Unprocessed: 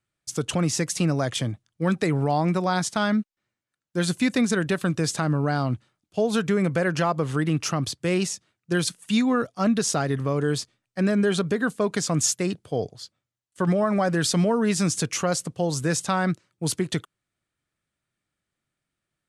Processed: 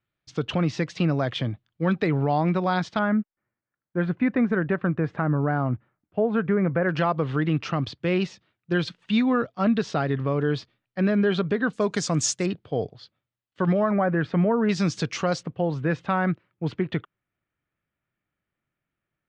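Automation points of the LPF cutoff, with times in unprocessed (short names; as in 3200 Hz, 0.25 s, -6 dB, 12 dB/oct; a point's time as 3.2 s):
LPF 24 dB/oct
3900 Hz
from 2.99 s 2000 Hz
from 6.89 s 3800 Hz
from 11.73 s 6900 Hz
from 12.46 s 3800 Hz
from 13.91 s 2200 Hz
from 14.69 s 4900 Hz
from 15.43 s 2800 Hz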